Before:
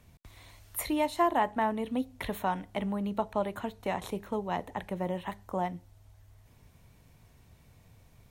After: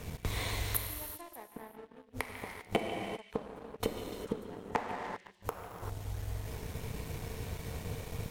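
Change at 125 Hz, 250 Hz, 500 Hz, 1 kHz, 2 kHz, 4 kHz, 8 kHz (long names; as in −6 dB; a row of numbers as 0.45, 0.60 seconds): +3.0, −9.0, −6.5, −9.5, −2.0, +1.5, +2.0 decibels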